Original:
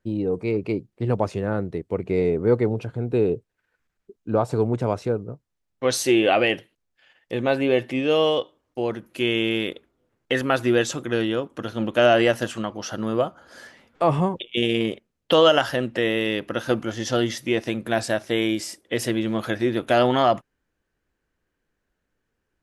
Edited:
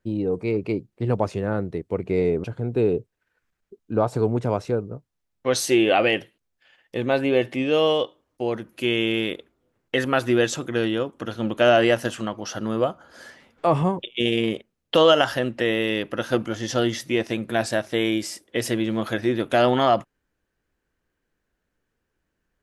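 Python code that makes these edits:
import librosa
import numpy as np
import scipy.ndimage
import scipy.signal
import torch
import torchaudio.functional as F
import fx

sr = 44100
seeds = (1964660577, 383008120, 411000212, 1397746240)

y = fx.edit(x, sr, fx.cut(start_s=2.44, length_s=0.37), tone=tone)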